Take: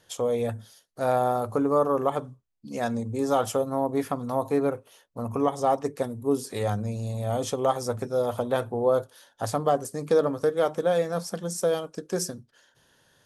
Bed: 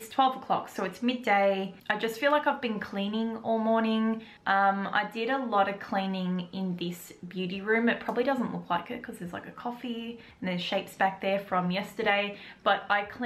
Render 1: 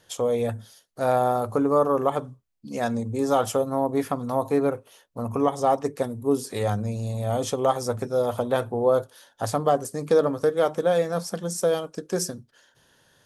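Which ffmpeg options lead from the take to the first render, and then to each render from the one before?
-af "volume=1.26"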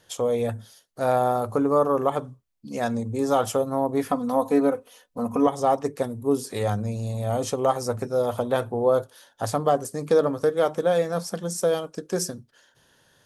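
-filter_complex "[0:a]asettb=1/sr,asplit=3[s0][s1][s2];[s0]atrim=end=4.084[s3];[s1]atrim=start=4.08:end=5.47,asetpts=PTS-STARTPTS,afade=t=in:d=0.004:c=qsin,afade=t=out:st=1.386:d=0.004:c=qsin,aecho=1:1:4:0.75,atrim=end_sample=61299[s4];[s2]atrim=start=5.466[s5];[s3][s4]acrossfade=d=0.004:c1=hsin:c2=qsin[s6];[s6][s5]acrossfade=d=0.004:c1=qsin:c2=hsin,asettb=1/sr,asplit=3[s7][s8][s9];[s7]atrim=end=7.294[s10];[s8]atrim=start=7.29:end=8.2,asetpts=PTS-STARTPTS,afade=t=in:d=0.004:c=qsin,afade=t=out:st=0.906:d=0.004:c=qsin,bandreject=f=3400:w=9.2[s11];[s9]atrim=start=8.196[s12];[s10][s11]acrossfade=d=0.004:c1=hsin:c2=qsin[s13];[s13][s12]acrossfade=d=0.004:c1=qsin:c2=hsin"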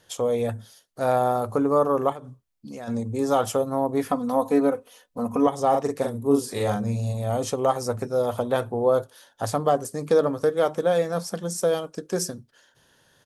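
-filter_complex "[0:a]asplit=3[s0][s1][s2];[s0]afade=t=out:st=2.12:d=0.02[s3];[s1]acompressor=threshold=0.02:ratio=5:attack=3.2:release=140:knee=1:detection=peak,afade=t=in:st=2.12:d=0.02,afade=t=out:st=2.87:d=0.02[s4];[s2]afade=t=in:st=2.87:d=0.02[s5];[s3][s4][s5]amix=inputs=3:normalize=0,asplit=3[s6][s7][s8];[s6]afade=t=out:st=5.73:d=0.02[s9];[s7]asplit=2[s10][s11];[s11]adelay=43,volume=0.668[s12];[s10][s12]amix=inputs=2:normalize=0,afade=t=in:st=5.73:d=0.02,afade=t=out:st=7.12:d=0.02[s13];[s8]afade=t=in:st=7.12:d=0.02[s14];[s9][s13][s14]amix=inputs=3:normalize=0"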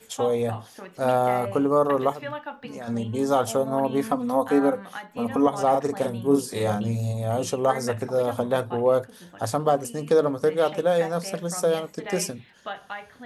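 -filter_complex "[1:a]volume=0.335[s0];[0:a][s0]amix=inputs=2:normalize=0"

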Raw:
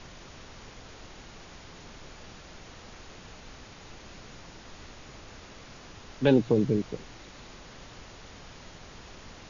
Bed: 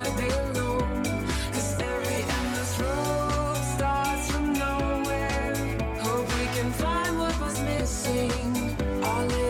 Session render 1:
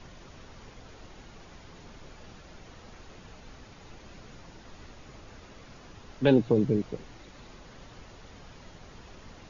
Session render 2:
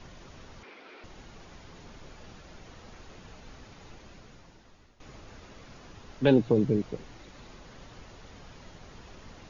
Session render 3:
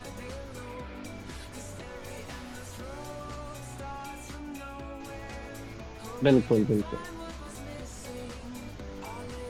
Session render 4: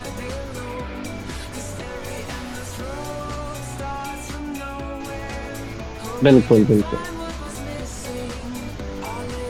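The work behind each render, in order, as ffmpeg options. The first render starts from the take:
-af "afftdn=nr=6:nf=-49"
-filter_complex "[0:a]asettb=1/sr,asplit=3[s0][s1][s2];[s0]atrim=end=0.634[s3];[s1]atrim=start=0.63:end=1.04,asetpts=PTS-STARTPTS,afade=t=in:d=0.004:c=qsin,afade=t=out:st=0.406:d=0.004:c=qsin,highpass=f=260:w=0.5412,highpass=f=260:w=1.3066,equalizer=f=360:t=q:w=4:g=5,equalizer=f=1400:t=q:w=4:g=5,equalizer=f=2300:t=q:w=4:g=10,lowpass=f=4800:w=0.5412,lowpass=f=4800:w=1.3066[s4];[s2]atrim=start=1.036[s5];[s3][s4]acrossfade=d=0.004:c1=hsin:c2=qsin[s6];[s6][s5]acrossfade=d=0.004:c1=qsin:c2=hsin,asplit=2[s7][s8];[s7]atrim=end=5,asetpts=PTS-STARTPTS,afade=t=out:st=3.83:d=1.17:silence=0.158489[s9];[s8]atrim=start=5,asetpts=PTS-STARTPTS,afade=t=in:d=0.004:c=hsin:silence=0.158489[s10];[s9][s10]concat=n=2:v=0:a=1"
-filter_complex "[1:a]volume=0.188[s0];[0:a][s0]amix=inputs=2:normalize=0"
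-af "volume=3.35,alimiter=limit=0.891:level=0:latency=1"

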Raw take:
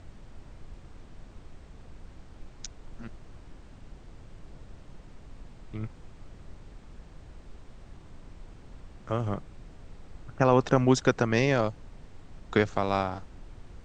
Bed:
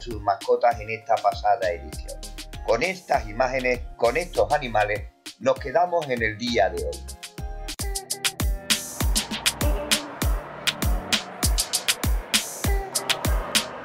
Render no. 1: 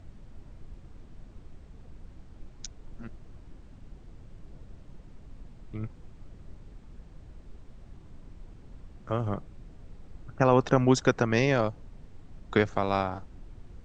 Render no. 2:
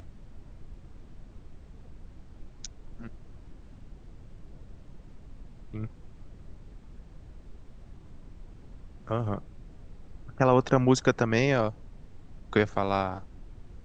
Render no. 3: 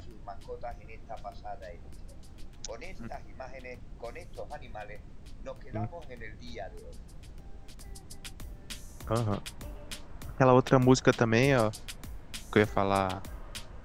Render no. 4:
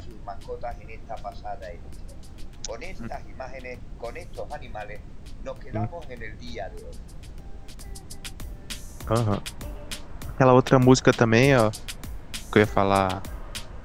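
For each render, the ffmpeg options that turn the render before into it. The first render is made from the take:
-af "afftdn=nr=6:nf=-50"
-af "acompressor=mode=upward:threshold=0.00708:ratio=2.5"
-filter_complex "[1:a]volume=0.0841[s0];[0:a][s0]amix=inputs=2:normalize=0"
-af "volume=2.11,alimiter=limit=0.708:level=0:latency=1"

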